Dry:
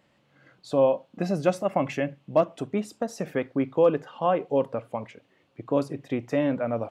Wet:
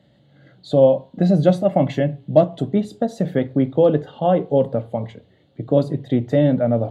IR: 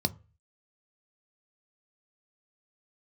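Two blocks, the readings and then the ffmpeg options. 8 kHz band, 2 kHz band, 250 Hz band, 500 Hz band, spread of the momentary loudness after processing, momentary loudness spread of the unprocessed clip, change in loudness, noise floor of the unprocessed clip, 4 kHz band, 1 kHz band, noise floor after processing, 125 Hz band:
n/a, 0.0 dB, +9.0 dB, +7.0 dB, 8 LU, 10 LU, +7.5 dB, -66 dBFS, +6.0 dB, +3.5 dB, -56 dBFS, +13.5 dB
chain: -filter_complex "[1:a]atrim=start_sample=2205,asetrate=35721,aresample=44100[a];[0:a][a]afir=irnorm=-1:irlink=0,volume=-4.5dB"

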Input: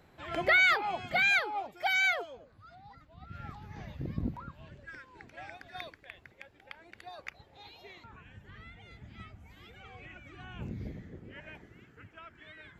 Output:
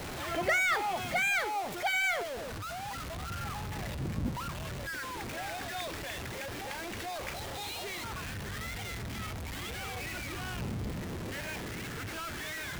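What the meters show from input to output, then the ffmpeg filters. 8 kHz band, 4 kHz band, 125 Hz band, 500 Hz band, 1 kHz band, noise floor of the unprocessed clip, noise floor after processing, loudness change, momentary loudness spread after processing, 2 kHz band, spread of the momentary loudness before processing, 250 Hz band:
+12.0 dB, +1.0 dB, +5.5 dB, +2.5 dB, +1.5 dB, -61 dBFS, -40 dBFS, -6.5 dB, 11 LU, -2.5 dB, 23 LU, +4.5 dB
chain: -filter_complex "[0:a]aeval=exprs='val(0)+0.5*0.0266*sgn(val(0))':c=same,bandreject=f=152.6:t=h:w=4,bandreject=f=305.2:t=h:w=4,bandreject=f=457.8:t=h:w=4,bandreject=f=610.4:t=h:w=4,bandreject=f=763:t=h:w=4,bandreject=f=915.6:t=h:w=4,bandreject=f=1.0682k:t=h:w=4,bandreject=f=1.2208k:t=h:w=4,bandreject=f=1.3734k:t=h:w=4,bandreject=f=1.526k:t=h:w=4,bandreject=f=1.6786k:t=h:w=4,bandreject=f=1.8312k:t=h:w=4,bandreject=f=1.9838k:t=h:w=4,bandreject=f=2.1364k:t=h:w=4,bandreject=f=2.289k:t=h:w=4,bandreject=f=2.4416k:t=h:w=4,bandreject=f=2.5942k:t=h:w=4,bandreject=f=2.7468k:t=h:w=4,bandreject=f=2.8994k:t=h:w=4,bandreject=f=3.052k:t=h:w=4,bandreject=f=3.2046k:t=h:w=4,bandreject=f=3.3572k:t=h:w=4,bandreject=f=3.5098k:t=h:w=4,bandreject=f=3.6624k:t=h:w=4,bandreject=f=3.815k:t=h:w=4,bandreject=f=3.9676k:t=h:w=4,bandreject=f=4.1202k:t=h:w=4,bandreject=f=4.2728k:t=h:w=4,bandreject=f=4.4254k:t=h:w=4,bandreject=f=4.578k:t=h:w=4,bandreject=f=4.7306k:t=h:w=4,bandreject=f=4.8832k:t=h:w=4,bandreject=f=5.0358k:t=h:w=4,bandreject=f=5.1884k:t=h:w=4,acrossover=split=590|1500[a][b][c];[c]asoftclip=type=hard:threshold=-27dB[d];[a][b][d]amix=inputs=3:normalize=0,volume=-2.5dB"

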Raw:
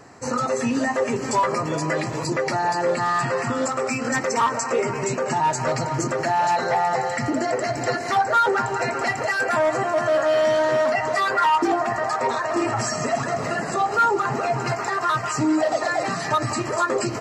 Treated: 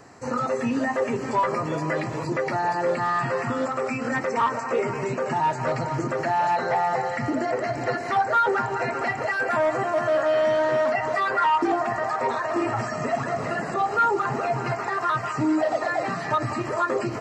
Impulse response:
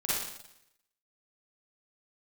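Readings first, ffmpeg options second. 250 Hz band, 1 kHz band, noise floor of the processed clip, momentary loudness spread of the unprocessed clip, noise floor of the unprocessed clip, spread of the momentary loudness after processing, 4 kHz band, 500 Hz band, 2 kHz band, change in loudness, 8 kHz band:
-2.0 dB, -2.0 dB, -31 dBFS, 5 LU, -29 dBFS, 6 LU, -7.0 dB, -2.0 dB, -2.5 dB, -2.5 dB, -13.0 dB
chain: -filter_complex "[0:a]acrossover=split=3200[a][b];[b]acompressor=threshold=-46dB:ratio=4:attack=1:release=60[c];[a][c]amix=inputs=2:normalize=0,volume=-2dB"

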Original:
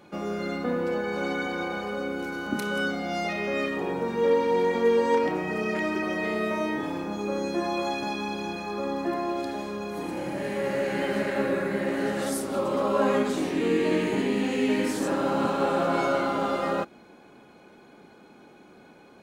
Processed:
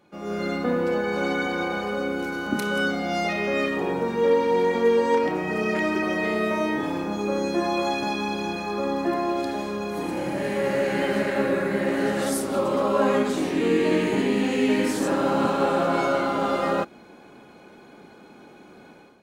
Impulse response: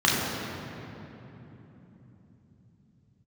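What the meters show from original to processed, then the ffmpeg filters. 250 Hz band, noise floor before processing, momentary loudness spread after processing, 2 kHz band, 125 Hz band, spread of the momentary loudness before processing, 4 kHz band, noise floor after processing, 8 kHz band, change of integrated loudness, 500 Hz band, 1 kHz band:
+3.0 dB, -52 dBFS, 7 LU, +3.5 dB, +3.0 dB, 8 LU, +3.5 dB, -49 dBFS, +3.5 dB, +3.0 dB, +3.0 dB, +3.0 dB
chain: -af "dynaudnorm=f=110:g=5:m=11.5dB,volume=-7.5dB"

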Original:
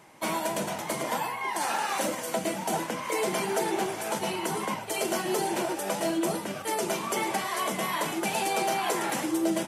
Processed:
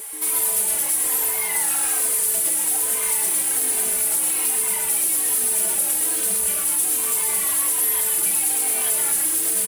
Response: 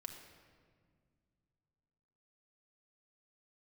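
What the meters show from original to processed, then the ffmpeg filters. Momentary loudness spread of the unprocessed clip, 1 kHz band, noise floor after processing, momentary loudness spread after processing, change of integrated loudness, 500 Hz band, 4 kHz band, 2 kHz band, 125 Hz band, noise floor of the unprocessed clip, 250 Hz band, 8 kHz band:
3 LU, -6.5 dB, -24 dBFS, 1 LU, +11.5 dB, -7.0 dB, +2.5 dB, +0.5 dB, n/a, -37 dBFS, -9.0 dB, +18.5 dB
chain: -filter_complex "[0:a]highpass=f=200:p=1,highshelf=f=7.4k:t=q:w=3:g=13,asoftclip=type=tanh:threshold=-15dB,acrossover=split=480[a][b];[b]acompressor=threshold=-28dB:ratio=10[c];[a][c]amix=inputs=2:normalize=0,tiltshelf=f=1.4k:g=-3,acrusher=bits=2:mode=log:mix=0:aa=0.000001,asplit=2[d][e];[e]highpass=f=720:p=1,volume=18dB,asoftclip=type=tanh:threshold=-17.5dB[f];[d][f]amix=inputs=2:normalize=0,lowpass=f=2.2k:p=1,volume=-6dB,crystalizer=i=9.5:c=0,aeval=exprs='val(0)+0.0316*sin(2*PI*440*n/s)':c=same,asplit=2[g][h];[h]adelay=26,volume=-13dB[i];[g][i]amix=inputs=2:normalize=0,asplit=2[j][k];[k]asplit=4[l][m][n][o];[l]adelay=128,afreqshift=-130,volume=-4.5dB[p];[m]adelay=256,afreqshift=-260,volume=-13.6dB[q];[n]adelay=384,afreqshift=-390,volume=-22.7dB[r];[o]adelay=512,afreqshift=-520,volume=-31.9dB[s];[p][q][r][s]amix=inputs=4:normalize=0[t];[j][t]amix=inputs=2:normalize=0,asplit=2[u][v];[v]adelay=3.1,afreqshift=-1.2[w];[u][w]amix=inputs=2:normalize=1,volume=-6dB"

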